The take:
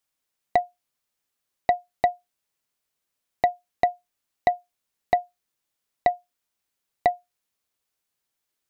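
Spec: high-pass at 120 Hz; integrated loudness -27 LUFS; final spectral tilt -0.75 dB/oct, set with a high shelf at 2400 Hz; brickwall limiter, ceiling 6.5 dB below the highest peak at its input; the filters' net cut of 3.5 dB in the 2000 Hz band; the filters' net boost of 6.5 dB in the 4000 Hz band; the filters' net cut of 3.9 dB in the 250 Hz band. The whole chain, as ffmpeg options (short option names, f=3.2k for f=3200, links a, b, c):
-af "highpass=120,equalizer=f=250:t=o:g=-5,equalizer=f=2k:t=o:g=-7,highshelf=f=2.4k:g=7,equalizer=f=4k:t=o:g=3,volume=5.5dB,alimiter=limit=-8.5dB:level=0:latency=1"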